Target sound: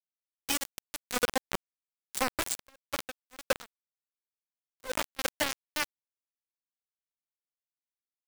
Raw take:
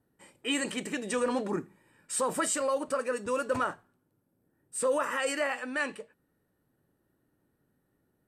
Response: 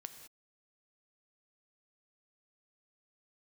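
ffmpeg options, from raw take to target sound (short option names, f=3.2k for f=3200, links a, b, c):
-filter_complex "[0:a]equalizer=f=1.2k:w=3.7:g=-3,acrusher=bits=3:mix=0:aa=0.000001,asettb=1/sr,asplit=3[a][b][c];[a]atrim=end=2.504[d];[b]atrim=start=2.5:end=5.19,asetpts=PTS-STARTPTS,afade=t=in:d=0.004:c=qsin,afade=t=out:st=2.686:d=0.004:c=qsin,aeval=exprs='val(0)*pow(10,-33*(0.5-0.5*cos(2*PI*2*n/s))/20)':c=same[e];[c]atrim=start=5.186[f];[d][e]acrossfade=d=0.004:c1=hsin:c2=qsin[g];[g][f]acrossfade=d=0.004:c1=qsin:c2=hsin"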